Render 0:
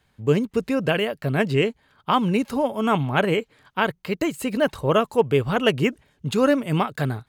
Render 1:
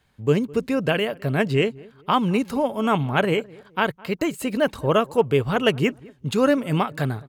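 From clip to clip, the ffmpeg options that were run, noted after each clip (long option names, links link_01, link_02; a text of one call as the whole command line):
ffmpeg -i in.wav -filter_complex "[0:a]asplit=2[link_01][link_02];[link_02]adelay=209,lowpass=frequency=1100:poles=1,volume=-22dB,asplit=2[link_03][link_04];[link_04]adelay=209,lowpass=frequency=1100:poles=1,volume=0.33[link_05];[link_01][link_03][link_05]amix=inputs=3:normalize=0" out.wav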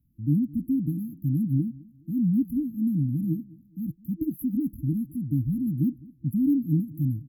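ffmpeg -i in.wav -af "afftfilt=real='re*(1-between(b*sr/4096,330,11000))':imag='im*(1-between(b*sr/4096,330,11000))':win_size=4096:overlap=0.75" out.wav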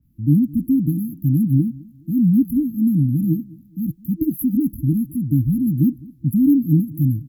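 ffmpeg -i in.wav -af "adynamicequalizer=threshold=0.00158:dfrequency=3000:dqfactor=0.7:tfrequency=3000:tqfactor=0.7:attack=5:release=100:ratio=0.375:range=2.5:mode=boostabove:tftype=highshelf,volume=8dB" out.wav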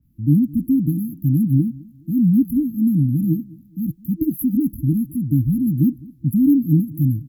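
ffmpeg -i in.wav -af anull out.wav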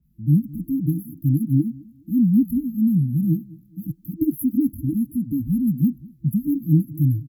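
ffmpeg -i in.wav -filter_complex "[0:a]asplit=2[link_01][link_02];[link_02]adelay=2.4,afreqshift=-0.33[link_03];[link_01][link_03]amix=inputs=2:normalize=1" out.wav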